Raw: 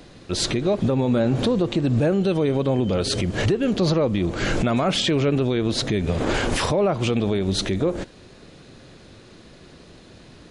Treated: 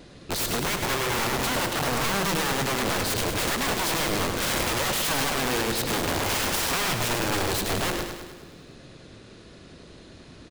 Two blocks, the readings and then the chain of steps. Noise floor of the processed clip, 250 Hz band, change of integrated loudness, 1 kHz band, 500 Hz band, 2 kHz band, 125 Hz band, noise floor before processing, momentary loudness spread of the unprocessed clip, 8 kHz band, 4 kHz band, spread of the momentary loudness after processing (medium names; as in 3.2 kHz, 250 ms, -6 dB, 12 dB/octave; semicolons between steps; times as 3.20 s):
-48 dBFS, -9.5 dB, -3.0 dB, +3.0 dB, -7.5 dB, +4.0 dB, -9.5 dB, -48 dBFS, 4 LU, +6.0 dB, +0.5 dB, 3 LU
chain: peaking EQ 810 Hz -2.5 dB 0.24 oct; Chebyshev shaper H 2 -14 dB, 4 -28 dB, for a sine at -11.5 dBFS; vibrato 1.4 Hz 9.8 cents; integer overflow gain 20 dB; feedback delay 103 ms, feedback 58%, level -6.5 dB; trim -2 dB